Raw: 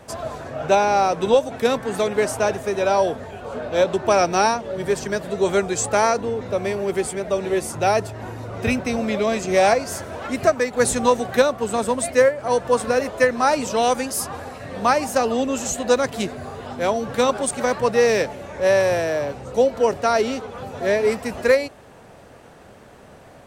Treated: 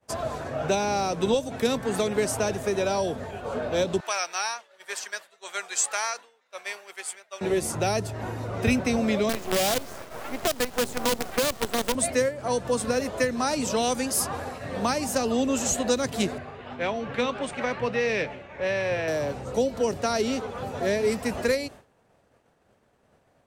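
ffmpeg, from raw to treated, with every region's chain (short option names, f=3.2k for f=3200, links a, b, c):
-filter_complex "[0:a]asettb=1/sr,asplit=3[a][b][c];[a]atrim=end=4.004[d];[b]atrim=start=4:end=7.41,asetpts=PTS-STARTPTS,afade=t=in:d=0.004:c=qsin,afade=t=out:st=3.406:d=0.004:c=qsin,highpass=1.4k,tremolo=f=1.1:d=0.35[e];[c]atrim=start=7.406[f];[d][e]acrossfade=d=0.004:c1=hsin:c2=qsin[g];[g][f]acrossfade=d=0.004:c1=qsin:c2=hsin,asettb=1/sr,asplit=3[h][i][j];[h]atrim=end=9.294[k];[i]atrim=start=9.29:end=11.95,asetpts=PTS-STARTPTS,afade=t=in:d=0.004:c=qsin,afade=t=out:st=2.656:d=0.004:c=qsin,asoftclip=type=hard:threshold=-14dB,bandpass=f=730:t=q:w=0.51,acrusher=bits=4:dc=4:mix=0:aa=0.000001[l];[j]atrim=start=11.946[m];[k][l]acrossfade=d=0.004:c1=hsin:c2=qsin[n];[n][m]acrossfade=d=0.004:c1=qsin:c2=hsin,asettb=1/sr,asplit=3[o][p][q];[o]atrim=end=16.384[r];[p]atrim=start=16.38:end=19.08,asetpts=PTS-STARTPTS,afade=t=in:d=0.004:c=qsin,afade=t=out:st=2.696:d=0.004:c=qsin,lowpass=f=2.5k:t=q:w=1.9,aemphasis=mode=production:type=50fm,flanger=delay=5.5:depth=3.1:regen=82:speed=1.7:shape=triangular[s];[q]atrim=start=19.076[t];[r][s]acrossfade=d=0.004:c1=hsin:c2=qsin[u];[u][t]acrossfade=d=0.004:c1=qsin:c2=hsin,agate=range=-33dB:threshold=-33dB:ratio=3:detection=peak,acrossover=split=320|3000[v][w][x];[w]acompressor=threshold=-26dB:ratio=6[y];[v][y][x]amix=inputs=3:normalize=0"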